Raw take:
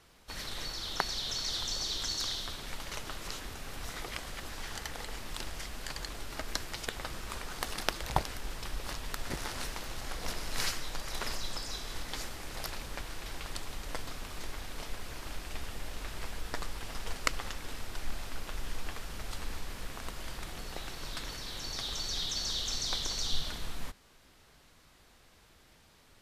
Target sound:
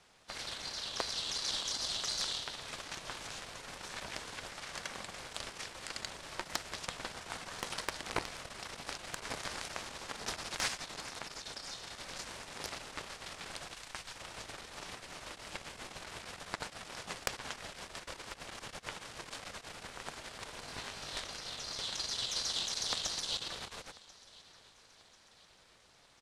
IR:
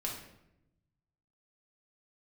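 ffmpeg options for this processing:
-filter_complex "[0:a]aeval=exprs='0.631*(cos(1*acos(clip(val(0)/0.631,-1,1)))-cos(1*PI/2))+0.158*(cos(8*acos(clip(val(0)/0.631,-1,1)))-cos(8*PI/2))':c=same,lowpass=f=9.9k:w=0.5412,lowpass=f=9.9k:w=1.3066,asoftclip=type=tanh:threshold=-15dB,highpass=200,asettb=1/sr,asplit=3[a][b][c];[a]atrim=end=11.034[d];[b]atrim=start=11.03:end=12.16,asetpts=PTS-STARTPTS,afade=t=in:d=0.004:c=qsin,afade=t=out:st=1.126:d=0.004:c=qsin,acompressor=threshold=-40dB:ratio=4[e];[c]atrim=start=12.156[f];[d][e]acrossfade=d=0.004:c1=hsin:c2=qsin[g];[g][f]acrossfade=d=0.004:c1=qsin:c2=hsin,aeval=exprs='val(0)*sin(2*PI*280*n/s)':c=same,asettb=1/sr,asplit=3[h][i][j];[h]atrim=end=13.744[k];[i]atrim=start=13.74:end=14.16,asetpts=PTS-STARTPTS,afade=t=in:d=0.004:c=qsin,afade=t=out:st=0.416:d=0.004:c=qsin,equalizer=f=300:w=0.33:g=-9.5[l];[j]atrim=start=14.156[m];[k][l]acrossfade=d=0.004:c1=hsin:c2=qsin[n];[n][m]acrossfade=d=0.004:c1=qsin:c2=hsin,asettb=1/sr,asplit=3[o][p][q];[o]atrim=end=20.654[r];[p]atrim=start=20.65:end=21.24,asetpts=PTS-STARTPTS,afade=t=in:d=0.004:c=qsin,afade=t=out:st=0.586:d=0.004:c=qsin,asplit=2[s][t];[t]adelay=20,volume=-3.5dB[u];[s][u]amix=inputs=2:normalize=0,atrim=end_sample=26019[v];[q]atrim=start=21.236[w];[r][v]acrossfade=d=0.004:c1=hsin:c2=qsin[x];[x][w]acrossfade=d=0.004:c1=qsin:c2=hsin,aecho=1:1:1041|2082|3123:0.0841|0.0362|0.0156,volume=1.5dB"

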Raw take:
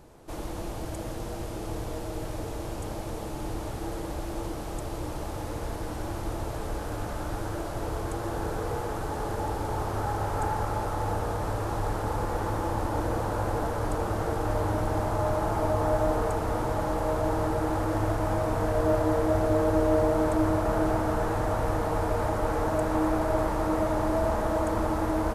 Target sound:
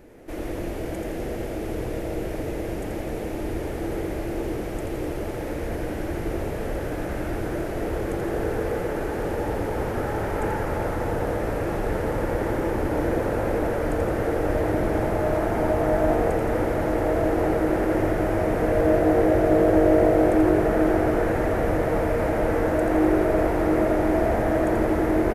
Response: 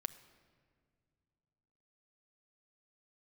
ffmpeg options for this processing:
-filter_complex "[0:a]equalizer=f=125:t=o:w=1:g=-8,equalizer=f=250:t=o:w=1:g=5,equalizer=f=500:t=o:w=1:g=4,equalizer=f=1k:t=o:w=1:g=-10,equalizer=f=2k:t=o:w=1:g=8,equalizer=f=4k:t=o:w=1:g=-6,equalizer=f=8k:t=o:w=1:g=-6,asplit=2[a][b];[b]asplit=8[c][d][e][f][g][h][i][j];[c]adelay=84,afreqshift=48,volume=-6dB[k];[d]adelay=168,afreqshift=96,volume=-10.7dB[l];[e]adelay=252,afreqshift=144,volume=-15.5dB[m];[f]adelay=336,afreqshift=192,volume=-20.2dB[n];[g]adelay=420,afreqshift=240,volume=-24.9dB[o];[h]adelay=504,afreqshift=288,volume=-29.7dB[p];[i]adelay=588,afreqshift=336,volume=-34.4dB[q];[j]adelay=672,afreqshift=384,volume=-39.1dB[r];[k][l][m][n][o][p][q][r]amix=inputs=8:normalize=0[s];[a][s]amix=inputs=2:normalize=0,volume=3dB"

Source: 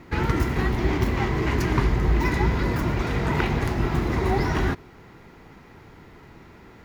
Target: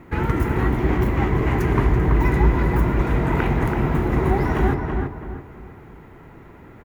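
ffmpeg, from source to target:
-filter_complex "[0:a]equalizer=f=4.8k:w=1.1:g=-13.5,asplit=2[a][b];[b]adelay=331,lowpass=f=1.8k:p=1,volume=-3dB,asplit=2[c][d];[d]adelay=331,lowpass=f=1.8k:p=1,volume=0.38,asplit=2[e][f];[f]adelay=331,lowpass=f=1.8k:p=1,volume=0.38,asplit=2[g][h];[h]adelay=331,lowpass=f=1.8k:p=1,volume=0.38,asplit=2[i][j];[j]adelay=331,lowpass=f=1.8k:p=1,volume=0.38[k];[c][e][g][i][k]amix=inputs=5:normalize=0[l];[a][l]amix=inputs=2:normalize=0,volume=2dB"

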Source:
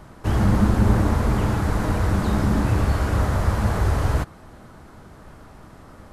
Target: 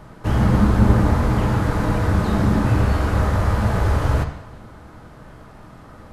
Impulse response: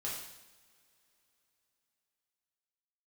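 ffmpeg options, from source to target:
-filter_complex "[0:a]asplit=2[a][b];[1:a]atrim=start_sample=2205,lowpass=5.3k[c];[b][c]afir=irnorm=-1:irlink=0,volume=-2.5dB[d];[a][d]amix=inputs=2:normalize=0,volume=-1.5dB"

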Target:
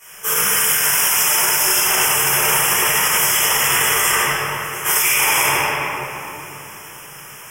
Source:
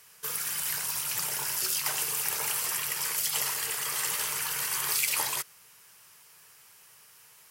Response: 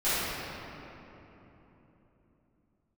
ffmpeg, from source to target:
-filter_complex "[0:a]asettb=1/sr,asplit=3[a][b][c];[a]atrim=end=0.534[d];[b]atrim=start=0.53:end=1.63,asetpts=PTS-STARTPTS,afade=t=in:d=0.004:c=qsin,afade=t=out:st=1.096:d=0.004:c=qsin,bass=f=250:g=-8,treble=f=4k:g=2[e];[c]atrim=start=1.626[f];[d][e]acrossfade=d=0.004:c1=hsin:c2=qsin[g];[g][f]acrossfade=d=0.004:c1=qsin:c2=hsin,asettb=1/sr,asplit=3[h][i][j];[h]atrim=end=4.104[k];[i]atrim=start=4.1:end=4.85,asetpts=PTS-STARTPTS,afade=t=in:d=0.004:c=qsin,afade=t=out:st=0.746:d=0.004:c=qsin,agate=range=-33dB:threshold=-19dB:ratio=3:detection=peak[l];[j]atrim=start=4.846[m];[k][l]acrossfade=d=0.004:c1=hsin:c2=qsin[n];[n][m]acrossfade=d=0.004:c1=qsin:c2=hsin,asuperstop=centerf=4200:order=20:qfactor=2.7,equalizer=f=89:w=6.6:g=-13.5[o];[1:a]atrim=start_sample=2205[p];[o][p]afir=irnorm=-1:irlink=0,alimiter=level_in=14dB:limit=-1dB:release=50:level=0:latency=1,volume=-5.5dB"

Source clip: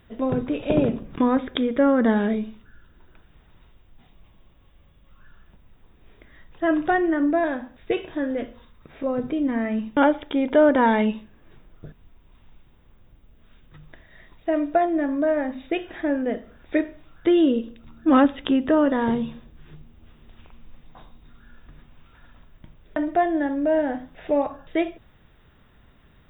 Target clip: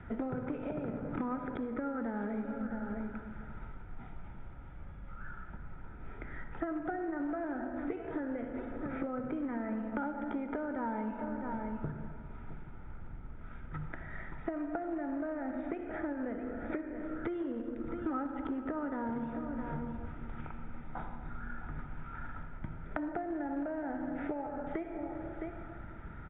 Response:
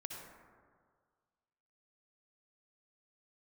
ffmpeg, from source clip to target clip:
-filter_complex "[0:a]acrossover=split=98|430|1000[a][b][c][d];[a]acompressor=threshold=-49dB:ratio=4[e];[b]acompressor=threshold=-32dB:ratio=4[f];[c]acompressor=threshold=-34dB:ratio=4[g];[d]acompressor=threshold=-43dB:ratio=4[h];[e][f][g][h]amix=inputs=4:normalize=0,crystalizer=i=5:c=0,asuperstop=centerf=1100:order=4:qfactor=2.9,aecho=1:1:662:0.168,asplit=2[i][j];[1:a]atrim=start_sample=2205[k];[j][k]afir=irnorm=-1:irlink=0,volume=1.5dB[l];[i][l]amix=inputs=2:normalize=0,acompressor=threshold=-35dB:ratio=8,equalizer=f=1.2k:t=o:w=0.57:g=10,aecho=1:1:0.9:0.36,acrusher=bits=3:mode=log:mix=0:aa=0.000001,lowpass=f=1.6k:w=0.5412,lowpass=f=1.6k:w=1.3066,volume=1dB"

